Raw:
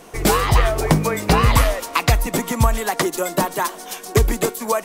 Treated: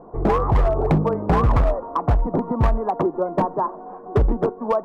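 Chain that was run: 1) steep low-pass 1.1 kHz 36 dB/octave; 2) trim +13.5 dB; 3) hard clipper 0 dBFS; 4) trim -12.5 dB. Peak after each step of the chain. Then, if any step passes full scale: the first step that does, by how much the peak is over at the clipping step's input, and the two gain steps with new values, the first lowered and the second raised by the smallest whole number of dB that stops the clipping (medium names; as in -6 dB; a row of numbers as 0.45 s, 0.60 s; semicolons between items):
-4.5 dBFS, +9.0 dBFS, 0.0 dBFS, -12.5 dBFS; step 2, 9.0 dB; step 2 +4.5 dB, step 4 -3.5 dB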